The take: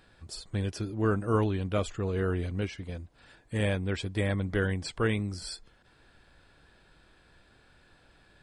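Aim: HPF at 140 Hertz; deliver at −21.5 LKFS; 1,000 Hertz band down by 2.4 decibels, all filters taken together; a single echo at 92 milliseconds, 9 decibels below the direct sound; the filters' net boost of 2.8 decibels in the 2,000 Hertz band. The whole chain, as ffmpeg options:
ffmpeg -i in.wav -af "highpass=140,equalizer=frequency=1000:width_type=o:gain=-5.5,equalizer=frequency=2000:width_type=o:gain=5.5,aecho=1:1:92:0.355,volume=10.5dB" out.wav

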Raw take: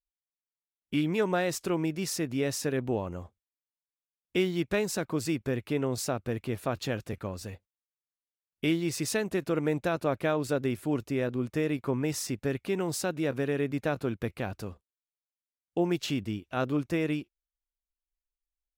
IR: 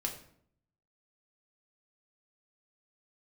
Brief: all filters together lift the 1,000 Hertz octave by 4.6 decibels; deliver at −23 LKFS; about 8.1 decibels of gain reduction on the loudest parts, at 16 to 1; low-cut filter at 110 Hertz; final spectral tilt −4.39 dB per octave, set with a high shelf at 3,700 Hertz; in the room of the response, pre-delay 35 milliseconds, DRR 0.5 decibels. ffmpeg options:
-filter_complex "[0:a]highpass=110,equalizer=frequency=1000:width_type=o:gain=6,highshelf=frequency=3700:gain=5,acompressor=threshold=-29dB:ratio=16,asplit=2[link_01][link_02];[1:a]atrim=start_sample=2205,adelay=35[link_03];[link_02][link_03]afir=irnorm=-1:irlink=0,volume=-2dB[link_04];[link_01][link_04]amix=inputs=2:normalize=0,volume=9dB"

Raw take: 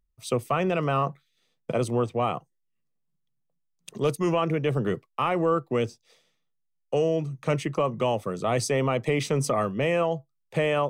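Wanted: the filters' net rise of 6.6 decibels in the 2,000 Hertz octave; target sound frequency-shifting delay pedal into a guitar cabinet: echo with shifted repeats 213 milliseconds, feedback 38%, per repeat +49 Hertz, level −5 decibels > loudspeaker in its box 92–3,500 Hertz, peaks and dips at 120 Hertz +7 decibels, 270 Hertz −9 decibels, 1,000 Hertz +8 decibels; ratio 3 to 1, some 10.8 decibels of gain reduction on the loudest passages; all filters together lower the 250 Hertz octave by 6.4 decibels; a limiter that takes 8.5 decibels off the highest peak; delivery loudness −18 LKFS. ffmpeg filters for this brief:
ffmpeg -i in.wav -filter_complex "[0:a]equalizer=frequency=250:width_type=o:gain=-9,equalizer=frequency=2000:width_type=o:gain=8,acompressor=threshold=-35dB:ratio=3,alimiter=level_in=4dB:limit=-24dB:level=0:latency=1,volume=-4dB,asplit=6[link_01][link_02][link_03][link_04][link_05][link_06];[link_02]adelay=213,afreqshift=49,volume=-5dB[link_07];[link_03]adelay=426,afreqshift=98,volume=-13.4dB[link_08];[link_04]adelay=639,afreqshift=147,volume=-21.8dB[link_09];[link_05]adelay=852,afreqshift=196,volume=-30.2dB[link_10];[link_06]adelay=1065,afreqshift=245,volume=-38.6dB[link_11];[link_01][link_07][link_08][link_09][link_10][link_11]amix=inputs=6:normalize=0,highpass=92,equalizer=frequency=120:width_type=q:width=4:gain=7,equalizer=frequency=270:width_type=q:width=4:gain=-9,equalizer=frequency=1000:width_type=q:width=4:gain=8,lowpass=frequency=3500:width=0.5412,lowpass=frequency=3500:width=1.3066,volume=19dB" out.wav

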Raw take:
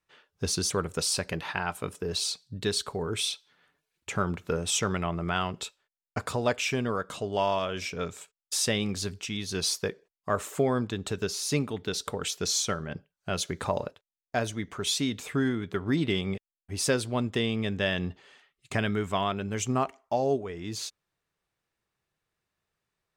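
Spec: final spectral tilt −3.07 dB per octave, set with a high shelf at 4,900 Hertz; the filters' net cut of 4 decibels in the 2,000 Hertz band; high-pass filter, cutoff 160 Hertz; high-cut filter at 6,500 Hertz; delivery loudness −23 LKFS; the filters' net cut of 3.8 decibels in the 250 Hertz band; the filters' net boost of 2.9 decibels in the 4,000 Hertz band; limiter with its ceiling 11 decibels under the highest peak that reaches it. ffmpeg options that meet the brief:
ffmpeg -i in.wav -af "highpass=160,lowpass=6500,equalizer=frequency=250:width_type=o:gain=-3.5,equalizer=frequency=2000:width_type=o:gain=-7.5,equalizer=frequency=4000:width_type=o:gain=4.5,highshelf=frequency=4900:gain=3.5,volume=12dB,alimiter=limit=-11.5dB:level=0:latency=1" out.wav

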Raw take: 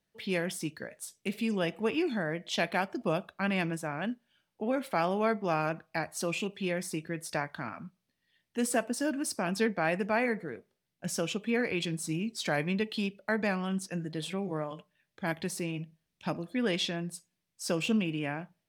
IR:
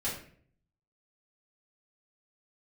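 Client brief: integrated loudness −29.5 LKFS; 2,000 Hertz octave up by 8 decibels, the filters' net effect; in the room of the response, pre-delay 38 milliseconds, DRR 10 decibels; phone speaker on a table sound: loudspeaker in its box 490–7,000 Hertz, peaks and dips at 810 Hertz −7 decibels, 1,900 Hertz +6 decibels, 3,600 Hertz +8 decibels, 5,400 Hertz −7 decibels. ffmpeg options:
-filter_complex "[0:a]equalizer=frequency=2000:width_type=o:gain=6,asplit=2[link_01][link_02];[1:a]atrim=start_sample=2205,adelay=38[link_03];[link_02][link_03]afir=irnorm=-1:irlink=0,volume=-15dB[link_04];[link_01][link_04]amix=inputs=2:normalize=0,highpass=frequency=490:width=0.5412,highpass=frequency=490:width=1.3066,equalizer=frequency=810:width_type=q:width=4:gain=-7,equalizer=frequency=1900:width_type=q:width=4:gain=6,equalizer=frequency=3600:width_type=q:width=4:gain=8,equalizer=frequency=5400:width_type=q:width=4:gain=-7,lowpass=frequency=7000:width=0.5412,lowpass=frequency=7000:width=1.3066,volume=0.5dB"

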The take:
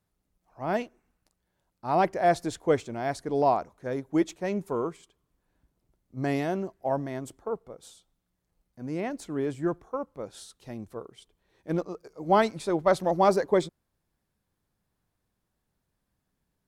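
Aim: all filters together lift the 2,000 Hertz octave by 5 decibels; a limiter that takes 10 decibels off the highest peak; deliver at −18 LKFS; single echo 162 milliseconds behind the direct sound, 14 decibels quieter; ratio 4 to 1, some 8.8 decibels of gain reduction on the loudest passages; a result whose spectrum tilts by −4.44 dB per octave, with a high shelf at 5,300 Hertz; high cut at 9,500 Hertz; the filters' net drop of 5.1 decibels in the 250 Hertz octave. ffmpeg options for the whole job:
ffmpeg -i in.wav -af "lowpass=9500,equalizer=frequency=250:width_type=o:gain=-8,equalizer=frequency=2000:width_type=o:gain=5.5,highshelf=frequency=5300:gain=7.5,acompressor=threshold=-27dB:ratio=4,alimiter=level_in=2.5dB:limit=-24dB:level=0:latency=1,volume=-2.5dB,aecho=1:1:162:0.2,volume=20.5dB" out.wav

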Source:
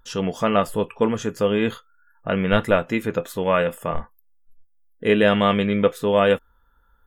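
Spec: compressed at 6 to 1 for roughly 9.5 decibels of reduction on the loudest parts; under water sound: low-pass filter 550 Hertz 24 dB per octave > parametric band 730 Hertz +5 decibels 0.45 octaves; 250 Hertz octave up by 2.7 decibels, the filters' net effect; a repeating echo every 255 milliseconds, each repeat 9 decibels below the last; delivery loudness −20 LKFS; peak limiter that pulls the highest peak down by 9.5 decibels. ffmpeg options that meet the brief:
ffmpeg -i in.wav -af "equalizer=frequency=250:width_type=o:gain=3.5,acompressor=threshold=-22dB:ratio=6,alimiter=limit=-20.5dB:level=0:latency=1,lowpass=frequency=550:width=0.5412,lowpass=frequency=550:width=1.3066,equalizer=frequency=730:width_type=o:width=0.45:gain=5,aecho=1:1:255|510|765|1020:0.355|0.124|0.0435|0.0152,volume=12.5dB" out.wav

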